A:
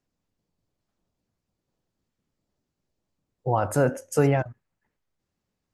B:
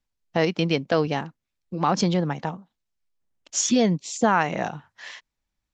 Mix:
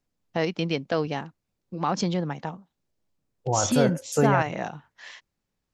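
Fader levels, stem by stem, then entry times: -1.5 dB, -4.0 dB; 0.00 s, 0.00 s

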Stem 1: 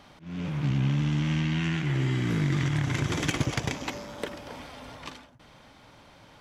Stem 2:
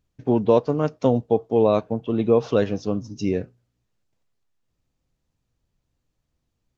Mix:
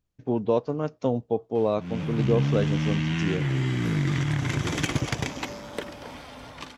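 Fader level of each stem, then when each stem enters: +1.0 dB, -6.0 dB; 1.55 s, 0.00 s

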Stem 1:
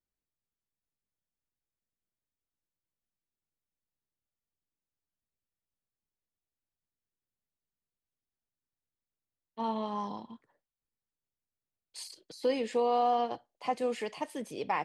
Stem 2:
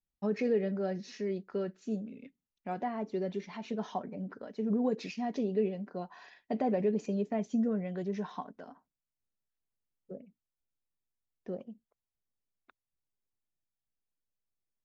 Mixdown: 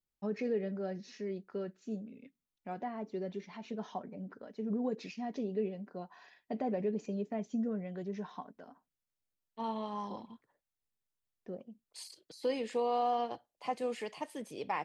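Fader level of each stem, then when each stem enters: -4.0 dB, -4.5 dB; 0.00 s, 0.00 s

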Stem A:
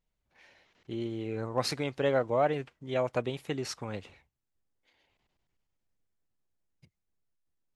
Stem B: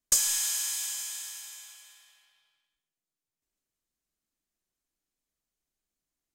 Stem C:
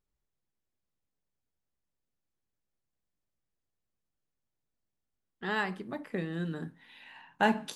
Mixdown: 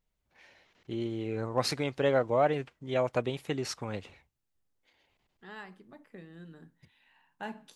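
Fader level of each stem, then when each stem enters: +1.0 dB, mute, -14.0 dB; 0.00 s, mute, 0.00 s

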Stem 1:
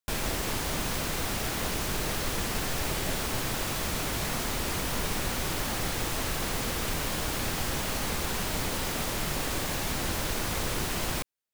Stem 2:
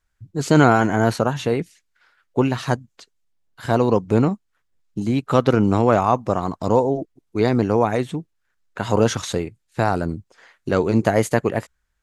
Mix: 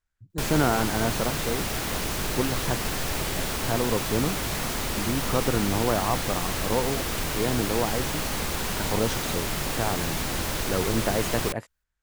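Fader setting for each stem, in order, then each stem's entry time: +2.0 dB, -9.0 dB; 0.30 s, 0.00 s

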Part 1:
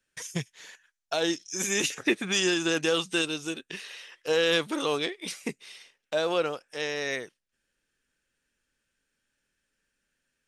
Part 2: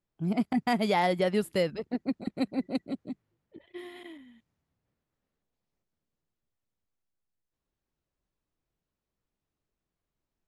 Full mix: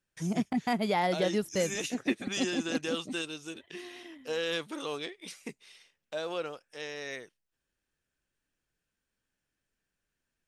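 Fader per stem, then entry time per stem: -8.5 dB, -2.5 dB; 0.00 s, 0.00 s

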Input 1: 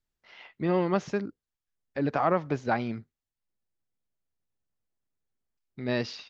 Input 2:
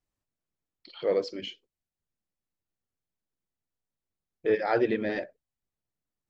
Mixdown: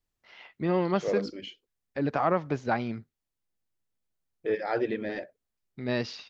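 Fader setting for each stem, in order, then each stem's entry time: -0.5 dB, -3.5 dB; 0.00 s, 0.00 s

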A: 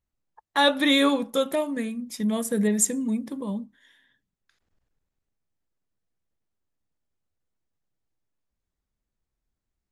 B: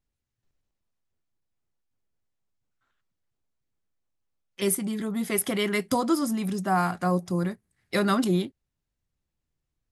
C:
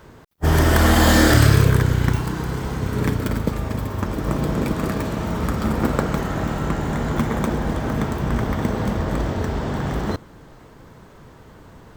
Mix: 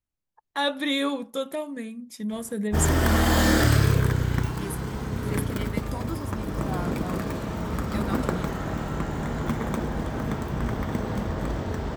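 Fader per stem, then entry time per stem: -5.5 dB, -12.0 dB, -6.0 dB; 0.00 s, 0.00 s, 2.30 s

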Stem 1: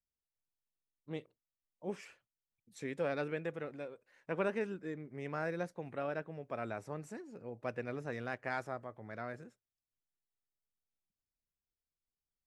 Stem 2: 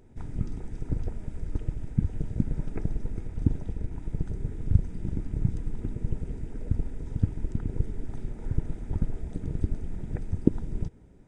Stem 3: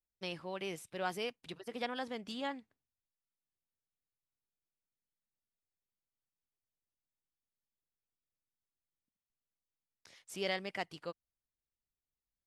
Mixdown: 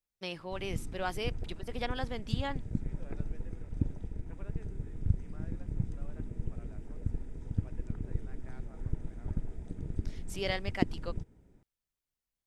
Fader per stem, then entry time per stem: -20.0 dB, -7.0 dB, +2.0 dB; 0.00 s, 0.35 s, 0.00 s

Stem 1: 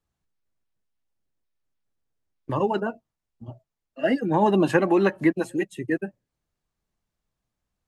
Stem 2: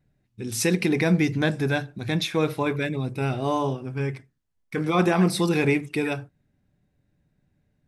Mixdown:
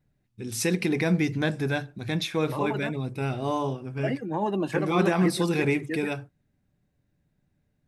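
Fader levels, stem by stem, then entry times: -7.5 dB, -3.0 dB; 0.00 s, 0.00 s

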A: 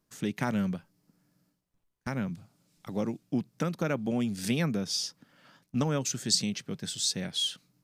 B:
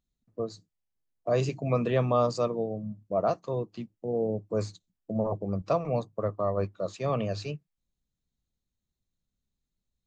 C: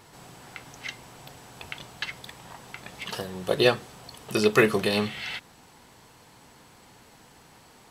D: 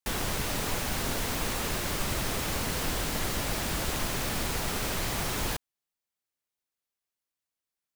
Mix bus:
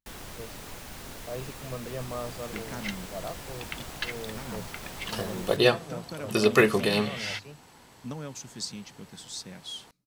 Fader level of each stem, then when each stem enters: -9.5 dB, -11.5 dB, -0.5 dB, -11.5 dB; 2.30 s, 0.00 s, 2.00 s, 0.00 s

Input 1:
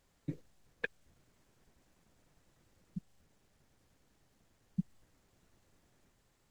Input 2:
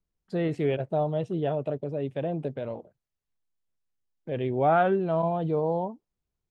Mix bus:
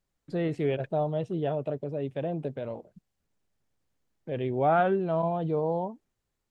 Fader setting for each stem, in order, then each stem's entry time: -11.5 dB, -1.5 dB; 0.00 s, 0.00 s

